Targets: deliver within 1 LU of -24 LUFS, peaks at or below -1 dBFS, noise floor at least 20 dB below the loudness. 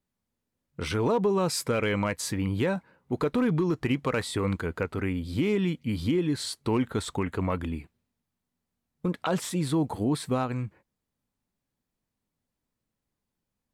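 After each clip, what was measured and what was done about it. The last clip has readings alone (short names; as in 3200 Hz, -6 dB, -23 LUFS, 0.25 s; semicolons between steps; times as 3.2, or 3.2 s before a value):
clipped 0.2%; flat tops at -18.0 dBFS; loudness -28.5 LUFS; peak -18.0 dBFS; loudness target -24.0 LUFS
-> clip repair -18 dBFS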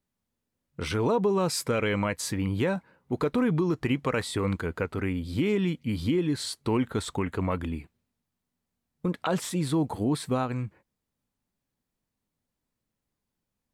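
clipped 0.0%; loudness -28.5 LUFS; peak -15.5 dBFS; loudness target -24.0 LUFS
-> gain +4.5 dB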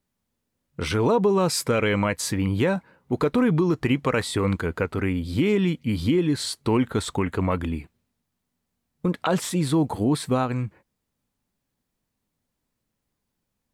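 loudness -24.0 LUFS; peak -11.0 dBFS; noise floor -80 dBFS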